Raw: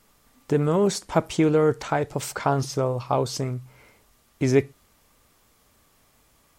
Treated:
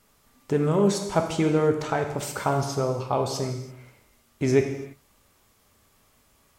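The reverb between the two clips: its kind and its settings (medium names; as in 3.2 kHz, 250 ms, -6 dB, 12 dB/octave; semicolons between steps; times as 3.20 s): gated-style reverb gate 360 ms falling, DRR 3.5 dB; trim -2.5 dB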